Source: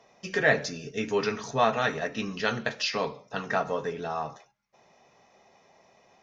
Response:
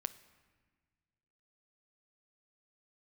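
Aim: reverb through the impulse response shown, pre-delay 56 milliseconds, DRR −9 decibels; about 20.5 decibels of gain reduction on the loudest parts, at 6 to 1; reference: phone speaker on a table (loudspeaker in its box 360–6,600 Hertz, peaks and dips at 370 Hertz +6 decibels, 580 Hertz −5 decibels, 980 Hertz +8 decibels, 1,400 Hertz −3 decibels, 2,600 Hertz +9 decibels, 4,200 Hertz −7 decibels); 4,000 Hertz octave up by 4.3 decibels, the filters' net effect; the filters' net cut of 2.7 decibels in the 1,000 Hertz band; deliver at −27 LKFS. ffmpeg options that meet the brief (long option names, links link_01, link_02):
-filter_complex "[0:a]equalizer=frequency=1000:width_type=o:gain=-7,equalizer=frequency=4000:width_type=o:gain=7,acompressor=threshold=-41dB:ratio=6,asplit=2[link_01][link_02];[1:a]atrim=start_sample=2205,adelay=56[link_03];[link_02][link_03]afir=irnorm=-1:irlink=0,volume=10dB[link_04];[link_01][link_04]amix=inputs=2:normalize=0,highpass=frequency=360:width=0.5412,highpass=frequency=360:width=1.3066,equalizer=frequency=370:width_type=q:width=4:gain=6,equalizer=frequency=580:width_type=q:width=4:gain=-5,equalizer=frequency=980:width_type=q:width=4:gain=8,equalizer=frequency=1400:width_type=q:width=4:gain=-3,equalizer=frequency=2600:width_type=q:width=4:gain=9,equalizer=frequency=4200:width_type=q:width=4:gain=-7,lowpass=frequency=6600:width=0.5412,lowpass=frequency=6600:width=1.3066,volume=6dB"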